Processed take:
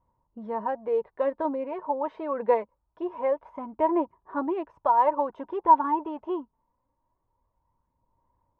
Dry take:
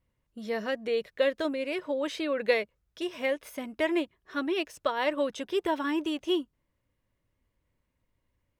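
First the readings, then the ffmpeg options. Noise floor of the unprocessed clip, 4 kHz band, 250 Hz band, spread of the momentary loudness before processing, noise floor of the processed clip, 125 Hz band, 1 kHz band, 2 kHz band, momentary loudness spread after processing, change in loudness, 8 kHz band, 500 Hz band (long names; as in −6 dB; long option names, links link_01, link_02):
−79 dBFS, below −20 dB, −0.5 dB, 8 LU, −78 dBFS, can't be measured, +12.5 dB, −11.0 dB, 13 LU, +3.5 dB, below −20 dB, +1.5 dB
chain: -af "lowpass=frequency=940:width_type=q:width=9.1,aphaser=in_gain=1:out_gain=1:delay=4.7:decay=0.37:speed=0.24:type=sinusoidal,volume=-2.5dB"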